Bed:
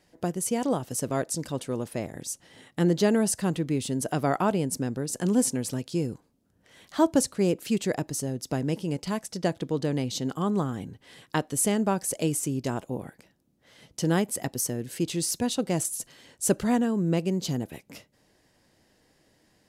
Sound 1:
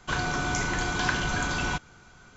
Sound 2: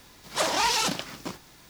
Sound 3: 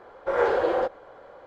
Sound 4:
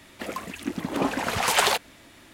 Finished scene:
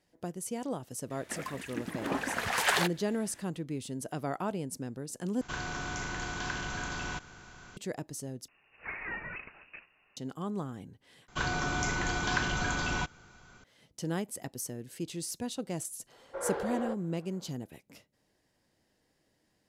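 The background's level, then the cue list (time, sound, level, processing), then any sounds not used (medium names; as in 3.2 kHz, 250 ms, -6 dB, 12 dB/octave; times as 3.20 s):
bed -9.5 dB
1.10 s: add 4 -8 dB + peaking EQ 1.7 kHz +7.5 dB 0.47 oct
5.41 s: replace with 1 -11.5 dB + spectral levelling over time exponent 0.6
8.48 s: replace with 2 -13 dB + frequency inversion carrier 2.8 kHz
11.28 s: replace with 1 -3.5 dB
16.07 s: add 3 -12.5 dB, fades 0.05 s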